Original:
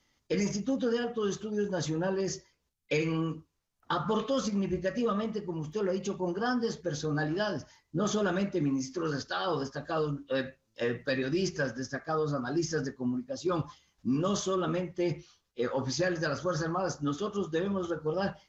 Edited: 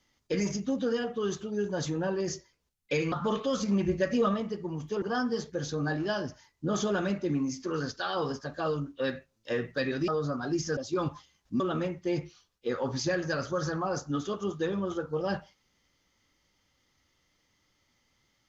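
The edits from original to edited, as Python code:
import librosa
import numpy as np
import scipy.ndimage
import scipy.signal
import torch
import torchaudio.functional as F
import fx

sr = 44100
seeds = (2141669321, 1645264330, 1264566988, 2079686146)

y = fx.edit(x, sr, fx.cut(start_s=3.12, length_s=0.84),
    fx.clip_gain(start_s=4.5, length_s=0.68, db=3.5),
    fx.cut(start_s=5.86, length_s=0.47),
    fx.cut(start_s=11.39, length_s=0.73),
    fx.cut(start_s=12.81, length_s=0.49),
    fx.cut(start_s=14.13, length_s=0.4), tone=tone)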